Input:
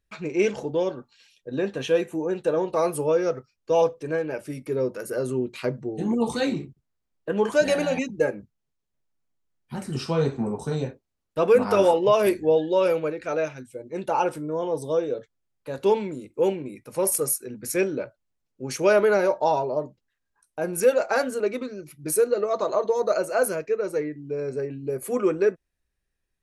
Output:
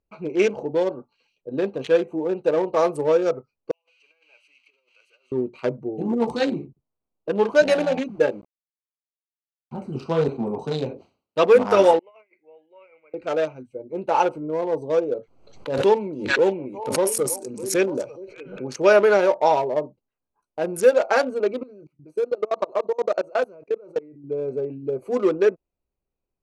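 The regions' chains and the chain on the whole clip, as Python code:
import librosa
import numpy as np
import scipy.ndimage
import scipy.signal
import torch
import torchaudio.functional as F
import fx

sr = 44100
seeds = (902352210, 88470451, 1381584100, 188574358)

y = fx.chain(x, sr, fx.crossing_spikes(level_db=-26.5),
    fx.over_compress(threshold_db=-28.0, ratio=-0.5),
    fx.ladder_bandpass(hz=2900.0, resonance_pct=65), at=(3.71, 5.32))
y = fx.chain(y, sr, fx.peak_eq(hz=7300.0, db=-6.0, octaves=0.43),
    fx.sample_gate(floor_db=-45.0), at=(7.35, 9.76))
y = fx.chain(y, sr, fx.highpass(hz=93.0, slope=12),
    fx.peak_eq(hz=3600.0, db=10.5, octaves=1.5),
    fx.sustainer(db_per_s=140.0), at=(10.28, 11.44))
y = fx.chain(y, sr, fx.bandpass_q(hz=2100.0, q=15.0),
    fx.over_compress(threshold_db=-50.0, ratio=-0.5), at=(11.99, 13.14))
y = fx.chain(y, sr, fx.echo_stepped(ms=298, hz=5600.0, octaves=-1.4, feedback_pct=70, wet_db=-3.5),
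    fx.pre_swell(db_per_s=63.0), at=(15.17, 18.68))
y = fx.chain(y, sr, fx.high_shelf(hz=10000.0, db=-5.0),
    fx.level_steps(step_db=23), at=(21.63, 24.24))
y = fx.wiener(y, sr, points=25)
y = scipy.signal.sosfilt(scipy.signal.butter(2, 8000.0, 'lowpass', fs=sr, output='sos'), y)
y = fx.low_shelf(y, sr, hz=210.0, db=-11.0)
y = y * 10.0 ** (5.5 / 20.0)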